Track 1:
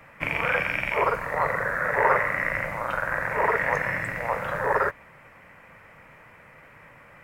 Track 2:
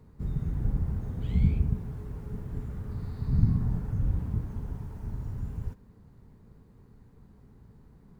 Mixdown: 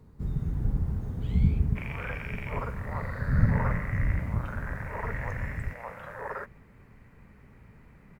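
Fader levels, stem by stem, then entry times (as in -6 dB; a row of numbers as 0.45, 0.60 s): -13.5, +0.5 dB; 1.55, 0.00 s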